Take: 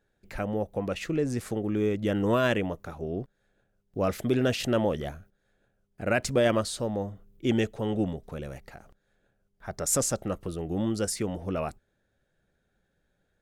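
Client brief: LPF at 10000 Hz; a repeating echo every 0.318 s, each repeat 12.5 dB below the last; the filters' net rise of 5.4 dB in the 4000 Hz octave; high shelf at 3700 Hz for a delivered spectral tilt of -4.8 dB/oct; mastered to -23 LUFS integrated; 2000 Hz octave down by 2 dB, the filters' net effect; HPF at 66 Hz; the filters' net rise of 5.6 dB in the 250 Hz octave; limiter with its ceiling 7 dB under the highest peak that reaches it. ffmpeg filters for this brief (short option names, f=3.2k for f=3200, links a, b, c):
-af "highpass=66,lowpass=10k,equalizer=f=250:t=o:g=7,equalizer=f=2k:t=o:g=-6,highshelf=f=3.7k:g=5.5,equalizer=f=4k:t=o:g=5.5,alimiter=limit=-15.5dB:level=0:latency=1,aecho=1:1:318|636|954:0.237|0.0569|0.0137,volume=4dB"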